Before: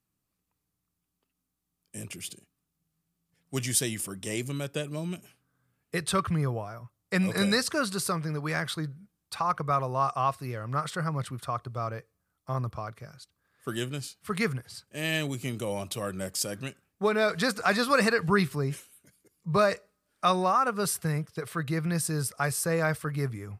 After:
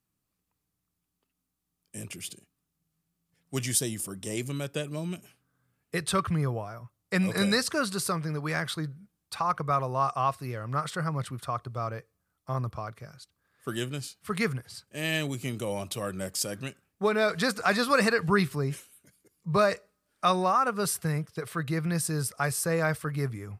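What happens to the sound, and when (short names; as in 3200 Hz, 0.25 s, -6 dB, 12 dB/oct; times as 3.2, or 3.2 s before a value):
3.77–4.37 dynamic EQ 2200 Hz, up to -8 dB, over -50 dBFS, Q 1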